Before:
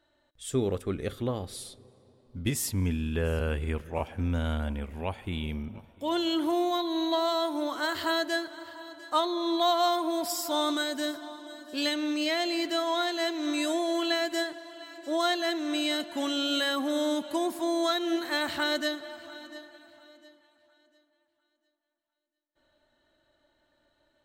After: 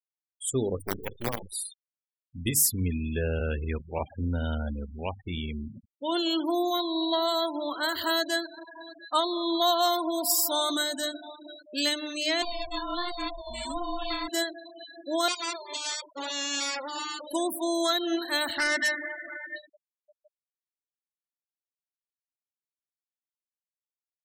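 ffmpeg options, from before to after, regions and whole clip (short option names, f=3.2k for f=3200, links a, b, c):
-filter_complex "[0:a]asettb=1/sr,asplit=3[a][b][c];[a]atrim=end=0.784[d];[b]atrim=start=0.78:end=1.52,asetpts=PTS-STARTPTS,afade=t=in:d=0.004:c=qsin,afade=t=out:st=0.736:d=0.004:c=qsin,bandreject=f=50:t=h:w=6,bandreject=f=100:t=h:w=6,bandreject=f=150:t=h:w=6,bandreject=f=200:t=h:w=6,bandreject=f=250:t=h:w=6,bandreject=f=300:t=h:w=6,bandreject=f=350:t=h:w=6,bandreject=f=400:t=h:w=6,bandreject=f=450:t=h:w=6,bandreject=f=500:t=h:w=6,acompressor=mode=upward:threshold=-35dB:ratio=2.5:attack=3.2:release=140:knee=2.83:detection=peak,acrusher=bits=5:dc=4:mix=0:aa=0.000001[e];[c]atrim=start=1.516[f];[d][e]acrossfade=d=0.004:c1=hsin:c2=qsin[g];[g][f]acrossfade=d=0.004:c1=qsin:c2=hsin,asettb=1/sr,asplit=3[h][i][j];[h]atrim=end=12.424[k];[i]atrim=start=12.42:end=14.28,asetpts=PTS-STARTPTS,afade=t=in:d=0.004:c=qsin,afade=t=out:st=1.856:d=0.004:c=qsin,lowshelf=f=270:t=q:w=3:g=-12.5,aeval=exprs='val(0)*sin(2*PI*350*n/s)':c=same,flanger=delay=5.5:depth=9.5:regen=-36:speed=1.2:shape=triangular[l];[j]atrim=start=14.276[m];[k][l]acrossfade=d=0.004:c1=hsin:c2=qsin[n];[n][m]acrossfade=d=0.004:c1=qsin:c2=hsin,asettb=1/sr,asplit=3[o][p][q];[o]atrim=end=15.284[r];[p]atrim=start=15.28:end=17.27,asetpts=PTS-STARTPTS,afade=t=in:d=0.004:c=qsin,afade=t=out:st=1.986:d=0.004:c=qsin,bandreject=f=50:t=h:w=6,bandreject=f=100:t=h:w=6,bandreject=f=150:t=h:w=6,bandreject=f=200:t=h:w=6,bandreject=f=250:t=h:w=6,bandreject=f=300:t=h:w=6,bandreject=f=350:t=h:w=6,bandreject=f=400:t=h:w=6,bandreject=f=450:t=h:w=6,aeval=exprs='abs(val(0))':c=same,highpass=240,lowpass=7.1k[s];[q]atrim=start=17.266[t];[r][s]acrossfade=d=0.004:c1=hsin:c2=qsin[u];[u][t]acrossfade=d=0.004:c1=qsin:c2=hsin,asettb=1/sr,asplit=3[v][w][x];[v]atrim=end=18.584[y];[w]atrim=start=18.58:end=19.56,asetpts=PTS-STARTPTS,afade=t=in:d=0.004:c=qsin,afade=t=out:st=0.976:d=0.004:c=qsin,lowpass=f=2k:t=q:w=8.8,asoftclip=type=hard:threshold=-24dB[z];[x]atrim=start=19.556[aa];[y][z]acrossfade=d=0.004:c1=hsin:c2=qsin[ab];[ab][aa]acrossfade=d=0.004:c1=qsin:c2=hsin,aemphasis=mode=production:type=50kf,bandreject=f=50:t=h:w=6,bandreject=f=100:t=h:w=6,bandreject=f=150:t=h:w=6,bandreject=f=200:t=h:w=6,bandreject=f=250:t=h:w=6,bandreject=f=300:t=h:w=6,afftfilt=real='re*gte(hypot(re,im),0.0251)':imag='im*gte(hypot(re,im),0.0251)':win_size=1024:overlap=0.75"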